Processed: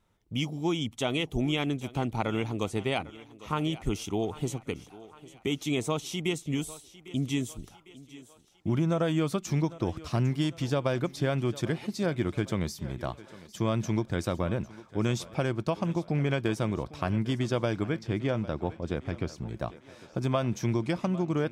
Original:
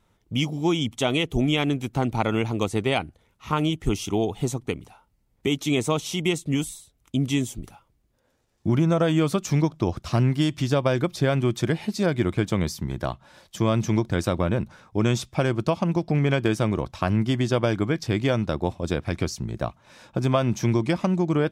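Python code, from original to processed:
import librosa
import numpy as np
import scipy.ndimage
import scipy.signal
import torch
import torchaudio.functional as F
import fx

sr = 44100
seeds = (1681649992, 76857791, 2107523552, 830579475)

p1 = fx.lowpass(x, sr, hz=2300.0, slope=6, at=(17.99, 19.38))
p2 = p1 + fx.echo_thinned(p1, sr, ms=802, feedback_pct=52, hz=210.0, wet_db=-17.0, dry=0)
y = p2 * 10.0 ** (-6.0 / 20.0)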